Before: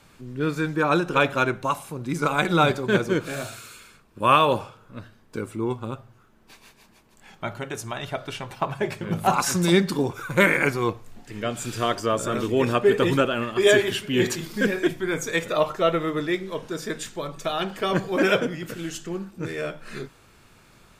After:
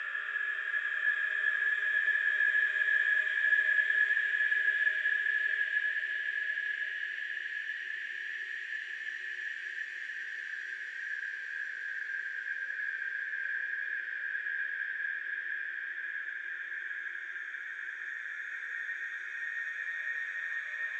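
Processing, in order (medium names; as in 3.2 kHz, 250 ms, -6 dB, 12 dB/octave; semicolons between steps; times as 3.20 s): Paulstretch 11×, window 1.00 s, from 13.42 s; ladder band-pass 1.8 kHz, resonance 85%; trim -5.5 dB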